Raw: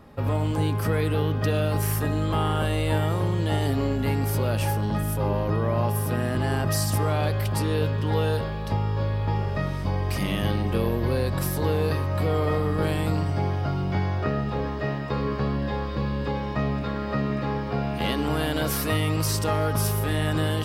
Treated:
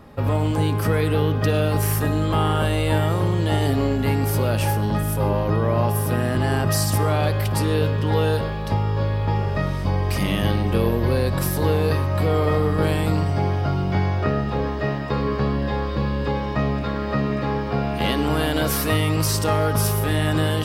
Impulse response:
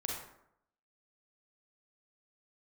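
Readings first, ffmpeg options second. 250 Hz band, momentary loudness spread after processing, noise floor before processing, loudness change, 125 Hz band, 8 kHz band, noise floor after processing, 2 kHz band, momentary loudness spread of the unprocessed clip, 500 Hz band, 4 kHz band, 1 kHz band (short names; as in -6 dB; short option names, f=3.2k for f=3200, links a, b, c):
+4.0 dB, 4 LU, -29 dBFS, +4.0 dB, +3.5 dB, +4.0 dB, -26 dBFS, +4.0 dB, 4 LU, +4.5 dB, +4.0 dB, +4.0 dB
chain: -filter_complex "[0:a]asplit=2[a][b];[1:a]atrim=start_sample=2205,adelay=55[c];[b][c]afir=irnorm=-1:irlink=0,volume=-19dB[d];[a][d]amix=inputs=2:normalize=0,volume=4dB"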